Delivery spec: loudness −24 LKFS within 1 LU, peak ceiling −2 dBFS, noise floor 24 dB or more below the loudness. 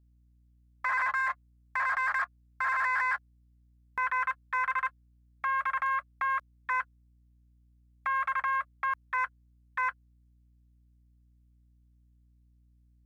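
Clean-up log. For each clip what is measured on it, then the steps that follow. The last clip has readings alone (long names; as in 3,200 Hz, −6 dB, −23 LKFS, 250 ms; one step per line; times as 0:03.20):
share of clipped samples 0.2%; peaks flattened at −23.0 dBFS; mains hum 60 Hz; hum harmonics up to 300 Hz; level of the hum −61 dBFS; integrated loudness −31.0 LKFS; sample peak −23.0 dBFS; target loudness −24.0 LKFS
→ clipped peaks rebuilt −23 dBFS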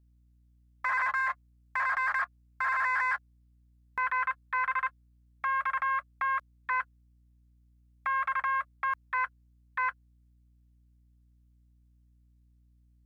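share of clipped samples 0.0%; mains hum 60 Hz; hum harmonics up to 300 Hz; level of the hum −61 dBFS
→ hum removal 60 Hz, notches 5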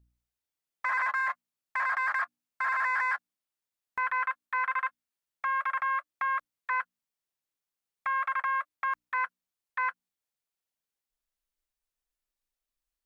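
mains hum none found; integrated loudness −31.0 LKFS; sample peak −21.0 dBFS; target loudness −24.0 LKFS
→ level +7 dB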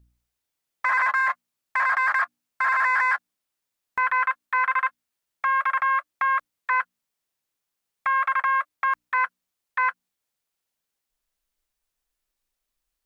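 integrated loudness −24.0 LKFS; sample peak −14.0 dBFS; background noise floor −83 dBFS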